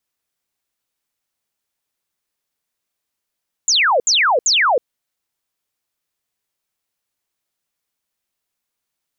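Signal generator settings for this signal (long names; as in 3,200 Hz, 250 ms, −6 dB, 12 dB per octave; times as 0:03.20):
repeated falling chirps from 7,500 Hz, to 450 Hz, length 0.32 s sine, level −11.5 dB, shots 3, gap 0.07 s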